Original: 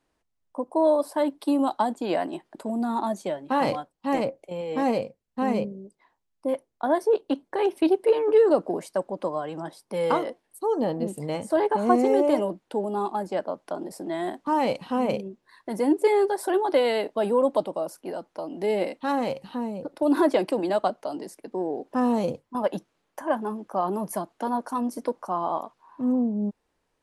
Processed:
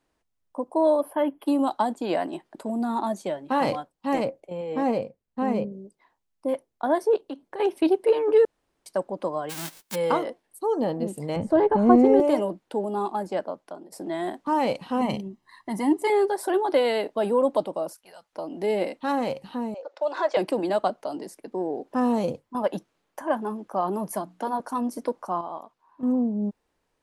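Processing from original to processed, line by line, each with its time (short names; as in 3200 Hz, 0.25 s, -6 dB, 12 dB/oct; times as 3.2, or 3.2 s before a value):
1–1.47 spectral gain 3400–9600 Hz -21 dB
4.4–5.72 high shelf 2300 Hz -7.5 dB
7.16–7.6 compressor 2:1, threshold -38 dBFS
8.45–8.86 room tone
9.49–9.94 spectral whitening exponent 0.1
11.36–12.2 RIAA curve playback
13.37–13.92 fade out, to -16.5 dB
15.01–16.1 comb 1 ms, depth 72%
17.93–18.33 passive tone stack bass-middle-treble 10-0-10
19.74–20.37 elliptic band-pass 510–6600 Hz
24.12–24.6 notches 60/120/180/240/300 Hz
25.41–26.03 gain -8 dB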